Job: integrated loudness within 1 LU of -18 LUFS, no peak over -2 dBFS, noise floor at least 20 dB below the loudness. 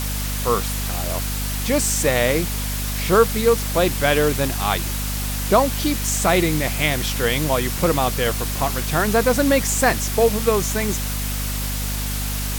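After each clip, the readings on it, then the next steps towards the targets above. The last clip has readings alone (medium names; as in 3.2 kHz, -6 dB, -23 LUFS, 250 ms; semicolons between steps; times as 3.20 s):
hum 50 Hz; highest harmonic 250 Hz; hum level -24 dBFS; noise floor -25 dBFS; noise floor target -40 dBFS; loudness -20.0 LUFS; peak level -3.0 dBFS; loudness target -18.0 LUFS
-> de-hum 50 Hz, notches 5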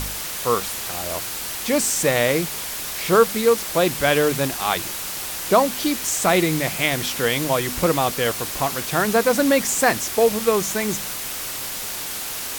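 hum not found; noise floor -30 dBFS; noise floor target -41 dBFS
-> noise print and reduce 11 dB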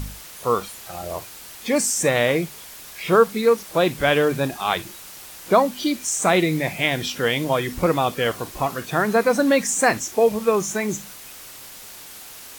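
noise floor -41 dBFS; loudness -21.0 LUFS; peak level -4.0 dBFS; loudness target -18.0 LUFS
-> trim +3 dB; peak limiter -2 dBFS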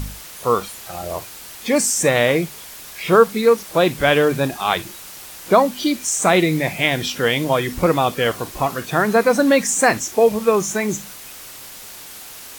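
loudness -18.0 LUFS; peak level -2.0 dBFS; noise floor -38 dBFS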